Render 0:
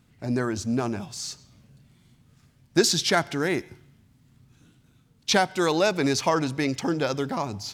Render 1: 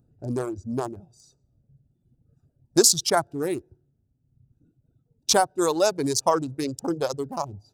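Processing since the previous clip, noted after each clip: Wiener smoothing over 41 samples; reverb removal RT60 1.5 s; EQ curve 140 Hz 0 dB, 200 Hz -6 dB, 340 Hz +2 dB, 1100 Hz +4 dB, 2100 Hz -10 dB, 8300 Hz +13 dB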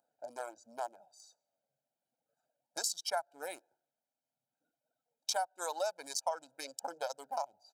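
comb 1.3 ms, depth 80%; compressor 4:1, threshold -30 dBFS, peak gain reduction 16.5 dB; ladder high-pass 470 Hz, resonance 25%; gain +1 dB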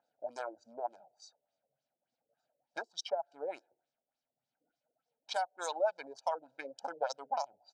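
LFO low-pass sine 3.4 Hz 430–5700 Hz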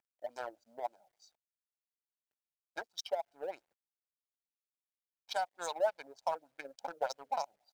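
G.711 law mismatch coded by A; gain +1 dB

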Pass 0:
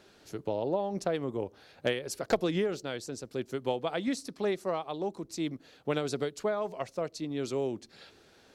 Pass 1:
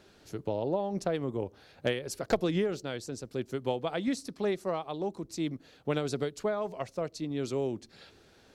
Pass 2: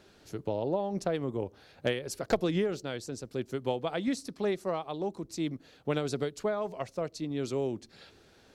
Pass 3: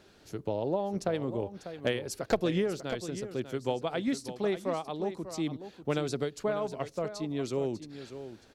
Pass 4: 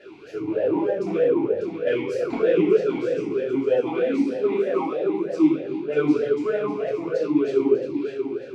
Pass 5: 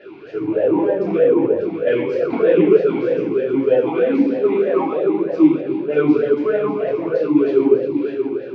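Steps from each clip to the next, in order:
low shelf 160 Hz +7 dB; gain -1 dB
nothing audible
echo 0.595 s -11.5 dB
power-law curve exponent 0.7; shoebox room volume 360 m³, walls mixed, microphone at 3.1 m; vowel sweep e-u 3.2 Hz; gain +6 dB
reverse delay 0.122 s, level -12 dB; HPF 80 Hz; air absorption 230 m; gain +6 dB

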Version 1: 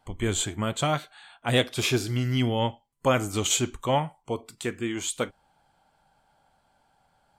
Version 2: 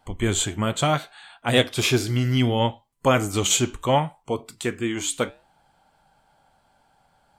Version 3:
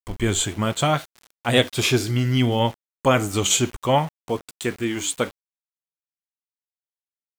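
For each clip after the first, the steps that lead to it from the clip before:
flange 0.68 Hz, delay 3.5 ms, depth 5.5 ms, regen -87%; gain +8.5 dB
sample gate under -37.5 dBFS; gain +1 dB

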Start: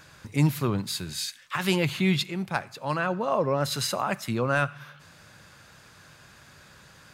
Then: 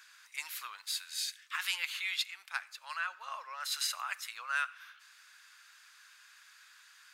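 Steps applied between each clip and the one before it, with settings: HPF 1300 Hz 24 dB/oct; gain -4 dB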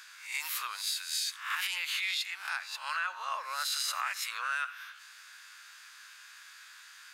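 spectral swells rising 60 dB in 0.45 s; limiter -28 dBFS, peak gain reduction 11.5 dB; gain +5 dB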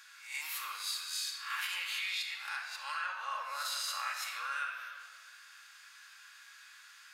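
shoebox room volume 2700 m³, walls mixed, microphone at 2.3 m; gain -6.5 dB

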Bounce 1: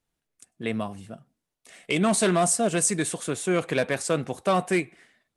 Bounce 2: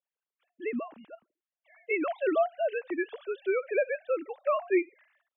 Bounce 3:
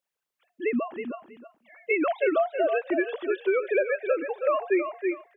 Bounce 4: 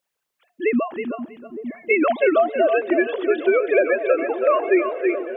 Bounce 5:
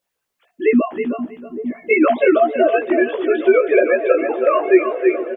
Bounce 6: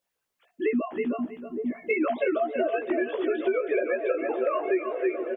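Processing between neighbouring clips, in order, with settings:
sine-wave speech; gain -5 dB
feedback echo 0.321 s, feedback 16%, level -9 dB; compressor, threshold -27 dBFS, peak gain reduction 7.5 dB; gain +7 dB
repeats that get brighter 0.456 s, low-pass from 200 Hz, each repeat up 1 oct, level -6 dB; gain +6.5 dB
low shelf 450 Hz +4.5 dB; doubler 16 ms -3 dB
compressor 4:1, threshold -19 dBFS, peak gain reduction 11 dB; gain -4.5 dB

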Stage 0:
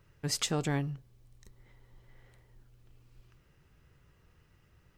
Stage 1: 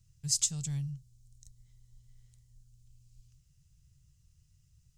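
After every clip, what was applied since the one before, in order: EQ curve 140 Hz 0 dB, 310 Hz -27 dB, 1700 Hz -22 dB, 7100 Hz +9 dB, 14000 Hz -4 dB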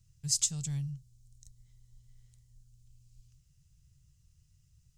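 nothing audible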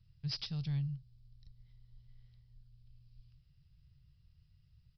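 hard clip -26.5 dBFS, distortion -10 dB; downsampling 11025 Hz

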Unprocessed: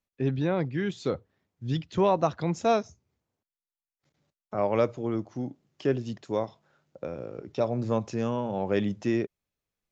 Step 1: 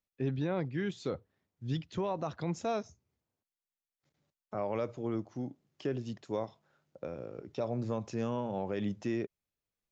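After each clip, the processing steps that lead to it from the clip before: limiter -19 dBFS, peak gain reduction 8 dB; gain -5 dB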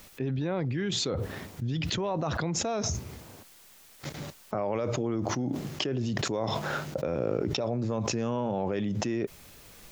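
fast leveller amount 100%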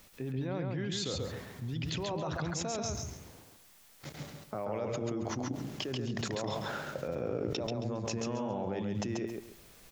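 feedback echo 0.136 s, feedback 25%, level -3.5 dB; gain -7 dB

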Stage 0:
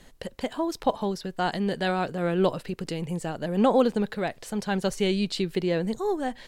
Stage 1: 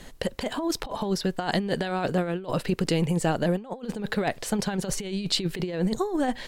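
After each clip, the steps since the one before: negative-ratio compressor -29 dBFS, ratio -0.5; gain +3.5 dB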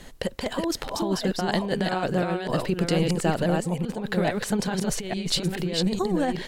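reverse delay 0.428 s, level -3 dB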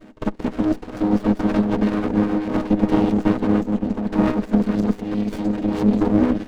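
chord vocoder minor triad, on G#3; pre-echo 51 ms -21 dB; running maximum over 33 samples; gain +8 dB

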